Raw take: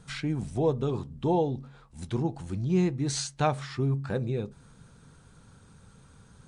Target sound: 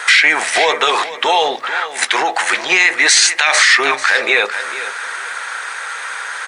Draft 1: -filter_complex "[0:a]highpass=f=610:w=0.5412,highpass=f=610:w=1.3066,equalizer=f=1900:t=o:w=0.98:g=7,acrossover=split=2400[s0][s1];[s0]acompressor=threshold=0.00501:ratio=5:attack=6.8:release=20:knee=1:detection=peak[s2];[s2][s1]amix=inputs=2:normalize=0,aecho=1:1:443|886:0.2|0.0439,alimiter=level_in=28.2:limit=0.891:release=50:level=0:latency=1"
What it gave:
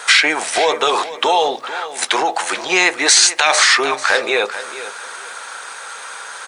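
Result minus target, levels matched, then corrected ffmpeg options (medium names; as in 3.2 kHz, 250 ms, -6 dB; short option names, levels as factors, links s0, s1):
2 kHz band -3.0 dB
-filter_complex "[0:a]highpass=f=610:w=0.5412,highpass=f=610:w=1.3066,equalizer=f=1900:t=o:w=0.98:g=19,acrossover=split=2400[s0][s1];[s0]acompressor=threshold=0.00501:ratio=5:attack=6.8:release=20:knee=1:detection=peak[s2];[s2][s1]amix=inputs=2:normalize=0,aecho=1:1:443|886:0.2|0.0439,alimiter=level_in=28.2:limit=0.891:release=50:level=0:latency=1"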